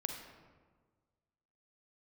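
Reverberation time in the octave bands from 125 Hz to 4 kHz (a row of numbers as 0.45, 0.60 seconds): 1.8, 1.7, 1.6, 1.4, 1.1, 0.80 seconds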